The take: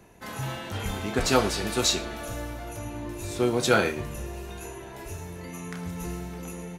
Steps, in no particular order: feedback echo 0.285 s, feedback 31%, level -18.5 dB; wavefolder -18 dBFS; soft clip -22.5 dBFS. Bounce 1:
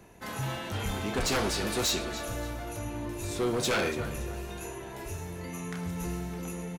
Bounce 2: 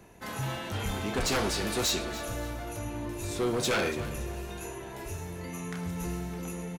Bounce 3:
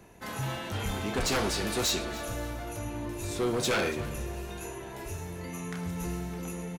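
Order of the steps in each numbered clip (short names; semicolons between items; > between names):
feedback echo > wavefolder > soft clip; wavefolder > feedback echo > soft clip; wavefolder > soft clip > feedback echo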